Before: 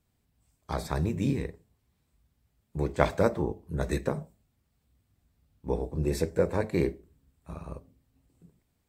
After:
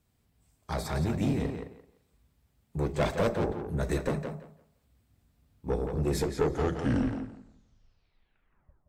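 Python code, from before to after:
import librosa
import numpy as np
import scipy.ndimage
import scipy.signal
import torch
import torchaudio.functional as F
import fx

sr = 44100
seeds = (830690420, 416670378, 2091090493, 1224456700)

y = fx.tape_stop_end(x, sr, length_s=2.83)
y = fx.tube_stage(y, sr, drive_db=24.0, bias=0.35)
y = fx.echo_tape(y, sr, ms=171, feedback_pct=22, wet_db=-3.5, lp_hz=4100.0, drive_db=28.0, wow_cents=21)
y = y * librosa.db_to_amplitude(3.0)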